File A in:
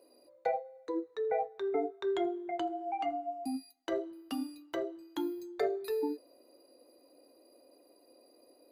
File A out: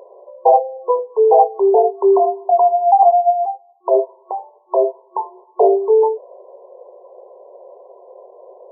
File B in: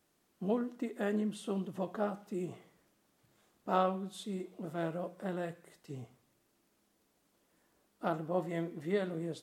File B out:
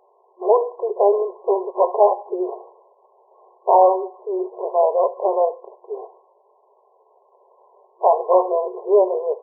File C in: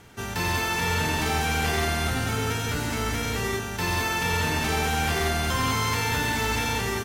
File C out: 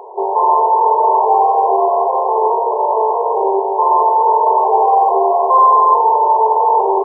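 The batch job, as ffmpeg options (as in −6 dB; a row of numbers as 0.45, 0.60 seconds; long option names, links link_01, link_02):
-af "apsyclip=27.5dB,tiltshelf=frequency=680:gain=-6.5,afftfilt=real='re*between(b*sr/4096,360,1100)':imag='im*between(b*sr/4096,360,1100)':win_size=4096:overlap=0.75,volume=-3.5dB"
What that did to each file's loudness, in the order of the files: +21.0, +17.5, +12.5 LU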